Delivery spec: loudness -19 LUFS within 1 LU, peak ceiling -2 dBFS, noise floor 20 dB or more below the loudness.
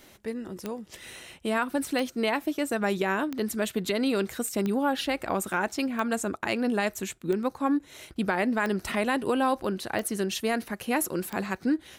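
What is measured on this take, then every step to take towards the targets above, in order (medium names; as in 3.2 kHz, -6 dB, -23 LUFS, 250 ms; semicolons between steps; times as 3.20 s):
clicks found 9; loudness -28.5 LUFS; peak level -15.0 dBFS; loudness target -19.0 LUFS
-> de-click; trim +9.5 dB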